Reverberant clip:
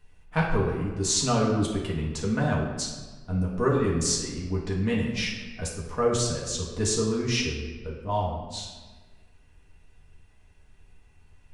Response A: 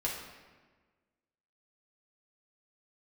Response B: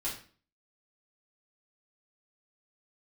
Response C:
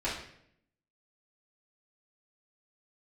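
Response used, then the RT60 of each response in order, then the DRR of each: A; 1.4, 0.40, 0.70 s; -5.0, -8.0, -10.5 dB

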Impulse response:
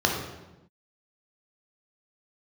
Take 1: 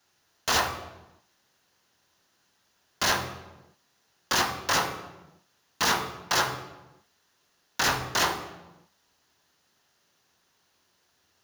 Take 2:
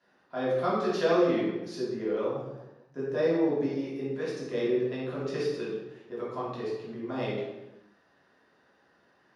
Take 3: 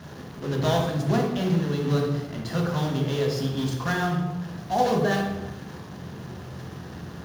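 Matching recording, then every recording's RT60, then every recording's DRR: 3; 1.0, 1.0, 1.0 s; 5.5, -9.0, -0.5 dB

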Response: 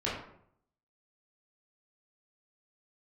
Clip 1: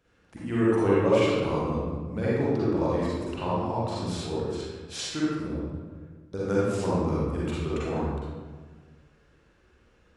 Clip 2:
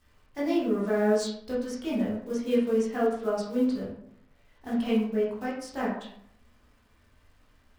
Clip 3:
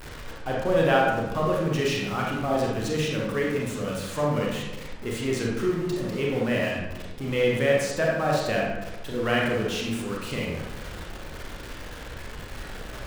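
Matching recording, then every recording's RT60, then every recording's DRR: 2; 1.5, 0.65, 1.1 s; -9.0, -8.0, -3.0 dB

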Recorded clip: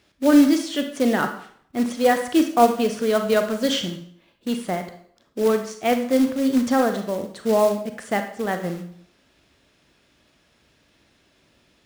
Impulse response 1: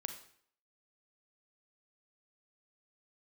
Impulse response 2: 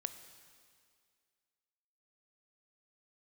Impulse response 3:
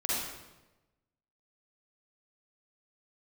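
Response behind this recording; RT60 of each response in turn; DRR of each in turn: 1; 0.60, 2.1, 1.1 s; 6.0, 10.0, -8.0 dB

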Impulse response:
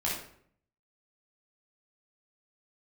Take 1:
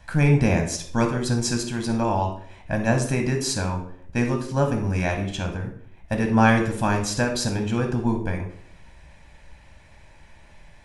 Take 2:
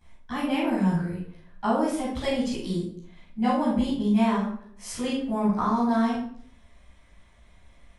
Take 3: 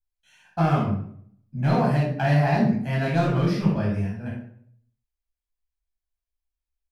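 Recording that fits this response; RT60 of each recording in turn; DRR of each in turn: 3; 0.60, 0.60, 0.60 s; 3.5, -14.0, -6.0 dB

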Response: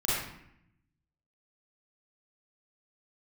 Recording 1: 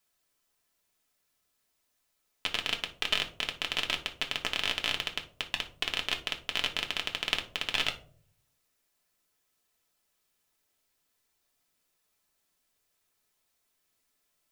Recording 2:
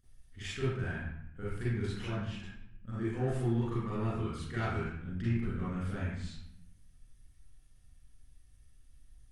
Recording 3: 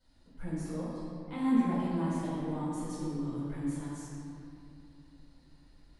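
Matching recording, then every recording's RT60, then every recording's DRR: 2; 0.50, 0.75, 2.6 s; 2.0, -10.0, -13.0 dB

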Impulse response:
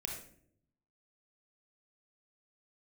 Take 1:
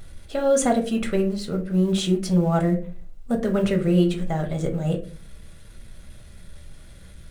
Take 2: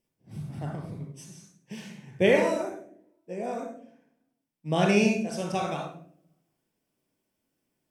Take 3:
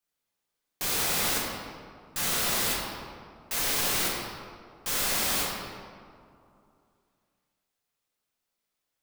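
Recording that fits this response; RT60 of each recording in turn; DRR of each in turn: 2; 0.40, 0.65, 2.5 s; 2.5, 0.5, -5.0 dB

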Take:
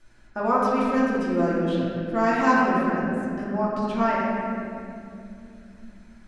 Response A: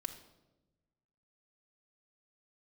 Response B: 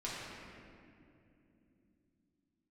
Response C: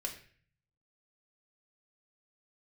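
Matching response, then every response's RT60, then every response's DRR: B; 1.0, 2.8, 0.50 s; 3.0, -8.0, 1.5 dB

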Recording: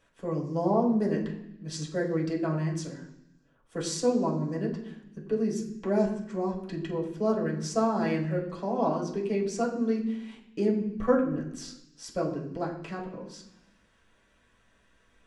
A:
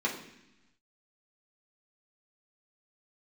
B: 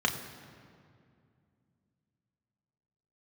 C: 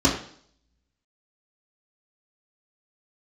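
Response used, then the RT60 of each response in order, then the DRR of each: A; 0.90, 2.3, 0.55 s; -4.0, 2.0, -6.5 dB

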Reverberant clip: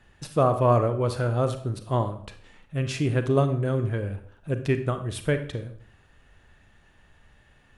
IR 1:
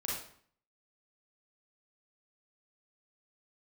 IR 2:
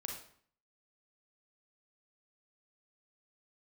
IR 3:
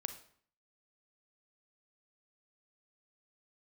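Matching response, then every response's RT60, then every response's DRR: 3; 0.55, 0.55, 0.55 s; -5.0, 0.5, 8.5 dB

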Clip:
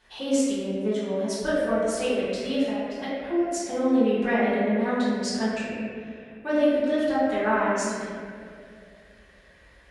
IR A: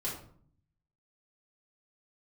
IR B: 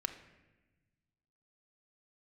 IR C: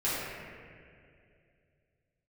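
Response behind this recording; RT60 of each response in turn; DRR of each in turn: C; 0.55, 1.1, 2.4 s; -8.0, 5.5, -11.5 dB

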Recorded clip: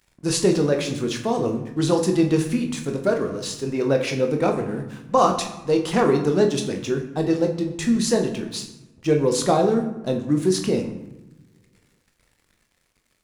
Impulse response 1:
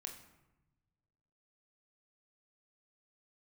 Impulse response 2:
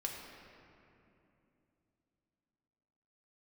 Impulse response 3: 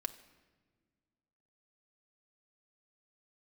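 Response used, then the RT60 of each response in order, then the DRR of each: 1; 1.0 s, 2.9 s, not exponential; 3.0, -1.0, 7.0 dB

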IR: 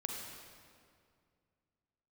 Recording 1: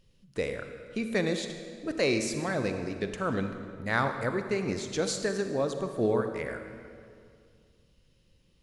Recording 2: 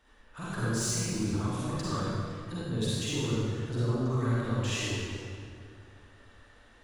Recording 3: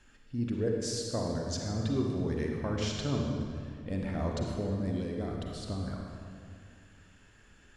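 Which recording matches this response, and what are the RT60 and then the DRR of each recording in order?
3; 2.2, 2.2, 2.2 s; 6.5, -9.5, 0.5 dB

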